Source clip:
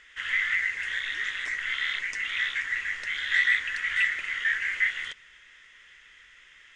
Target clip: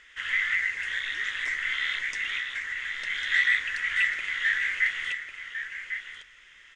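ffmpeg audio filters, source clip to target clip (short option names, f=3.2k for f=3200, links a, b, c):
-filter_complex "[0:a]asettb=1/sr,asplit=3[a][b][c];[a]atrim=end=2.364[d];[b]atrim=start=2.36:end=3.1,asetpts=PTS-STARTPTS,afade=t=in:d=0.004:c=qsin,afade=t=out:st=0.736:d=0.004:c=qsin,acompressor=threshold=-30dB:ratio=6[e];[c]atrim=start=3.096[f];[d][e]acrossfade=d=0.004:c1=hsin:c2=qsin[g];[g][f]acrossfade=d=0.004:c1=qsin:c2=hsin,asplit=2[h][i];[i]aecho=0:1:1099:0.376[j];[h][j]amix=inputs=2:normalize=0"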